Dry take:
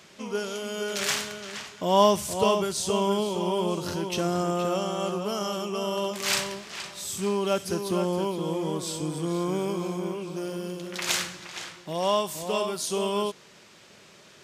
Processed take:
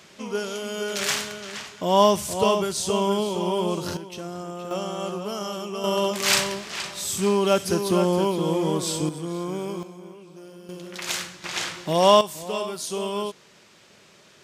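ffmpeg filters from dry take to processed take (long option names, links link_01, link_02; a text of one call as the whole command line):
ffmpeg -i in.wav -af "asetnsamples=nb_out_samples=441:pad=0,asendcmd='3.97 volume volume -8dB;4.71 volume volume -1dB;5.84 volume volume 5.5dB;9.09 volume volume -2dB;9.83 volume volume -11dB;10.69 volume volume -2dB;11.44 volume volume 9dB;12.21 volume volume -1dB',volume=2dB" out.wav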